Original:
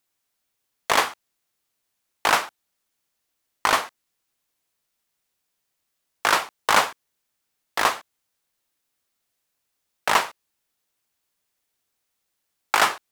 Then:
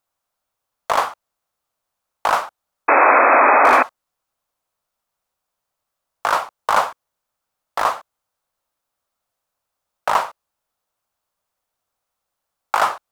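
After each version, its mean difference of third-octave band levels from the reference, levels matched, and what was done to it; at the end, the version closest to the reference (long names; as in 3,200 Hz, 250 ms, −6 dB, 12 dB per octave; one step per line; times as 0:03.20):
6.0 dB: low-shelf EQ 140 Hz +8.5 dB
sound drawn into the spectrogram noise, 0:02.88–0:03.83, 240–2,600 Hz −11 dBFS
flat-topped bell 850 Hz +10 dB
in parallel at +1 dB: brickwall limiter −3.5 dBFS, peak gain reduction 10 dB
on the sum: level −11 dB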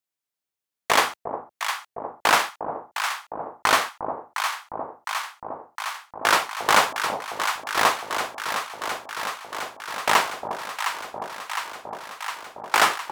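3.0 dB: high-pass filter 69 Hz
noise gate −32 dBFS, range −14 dB
in parallel at −2 dB: brickwall limiter −11.5 dBFS, peak gain reduction 8.5 dB
on the sum: delay that swaps between a low-pass and a high-pass 355 ms, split 850 Hz, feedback 87%, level −6 dB
level −2.5 dB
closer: second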